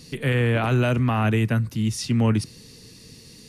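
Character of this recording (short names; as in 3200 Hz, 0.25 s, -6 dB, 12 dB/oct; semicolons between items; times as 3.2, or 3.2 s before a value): noise floor -47 dBFS; spectral tilt -6.5 dB/oct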